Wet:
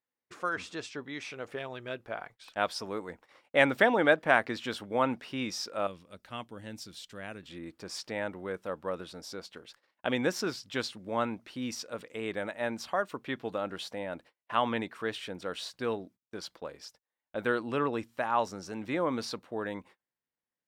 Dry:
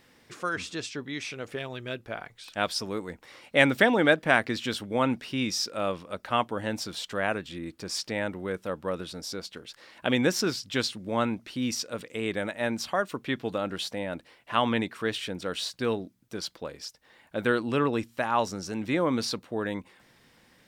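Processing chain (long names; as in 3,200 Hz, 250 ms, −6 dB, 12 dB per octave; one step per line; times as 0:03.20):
noise gate −48 dBFS, range −32 dB
parametric band 870 Hz +8.5 dB 2.7 octaves, from 0:05.87 −8 dB, from 0:07.43 +6.5 dB
level −8.5 dB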